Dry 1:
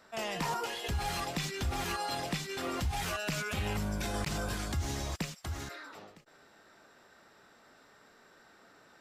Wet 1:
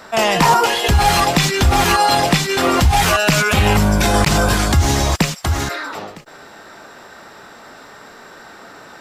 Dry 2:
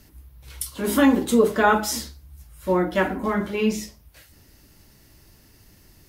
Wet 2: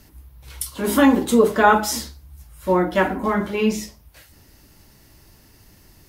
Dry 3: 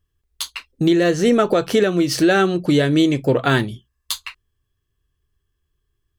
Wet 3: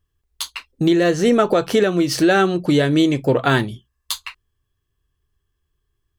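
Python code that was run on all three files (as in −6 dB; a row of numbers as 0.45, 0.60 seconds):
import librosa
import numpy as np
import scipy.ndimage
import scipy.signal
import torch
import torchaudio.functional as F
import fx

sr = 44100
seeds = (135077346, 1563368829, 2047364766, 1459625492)

y = fx.peak_eq(x, sr, hz=900.0, db=3.0, octaves=0.88)
y = librosa.util.normalize(y) * 10.0 ** (-3 / 20.0)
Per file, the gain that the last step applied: +19.5, +2.0, −0.5 decibels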